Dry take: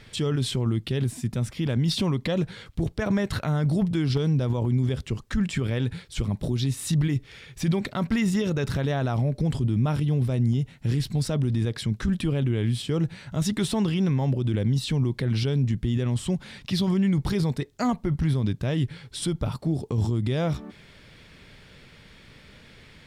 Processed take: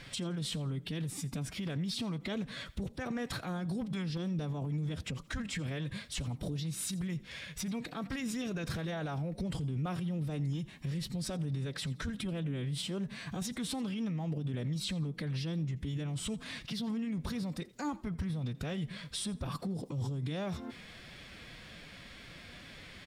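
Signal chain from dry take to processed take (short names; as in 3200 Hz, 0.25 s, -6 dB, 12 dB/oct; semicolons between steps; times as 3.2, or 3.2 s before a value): low shelf 440 Hz -4.5 dB; compressor, threshold -32 dBFS, peak gain reduction 9.5 dB; limiter -29.5 dBFS, peak gain reduction 10.5 dB; formant-preserving pitch shift +3 st; on a send: frequency-shifting echo 85 ms, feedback 31%, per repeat +33 Hz, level -21 dB; on the sum: gain +2 dB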